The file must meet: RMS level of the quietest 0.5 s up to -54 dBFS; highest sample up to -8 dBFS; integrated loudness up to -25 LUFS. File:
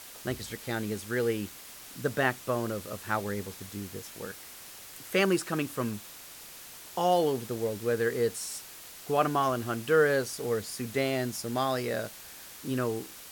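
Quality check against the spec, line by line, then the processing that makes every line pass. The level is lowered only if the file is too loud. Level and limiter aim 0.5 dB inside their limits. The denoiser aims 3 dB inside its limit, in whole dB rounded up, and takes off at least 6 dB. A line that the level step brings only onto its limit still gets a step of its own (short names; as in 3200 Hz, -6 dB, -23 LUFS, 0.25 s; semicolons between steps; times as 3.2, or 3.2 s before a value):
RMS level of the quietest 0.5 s -47 dBFS: fail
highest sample -11.5 dBFS: OK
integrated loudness -30.5 LUFS: OK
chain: denoiser 10 dB, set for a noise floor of -47 dBFS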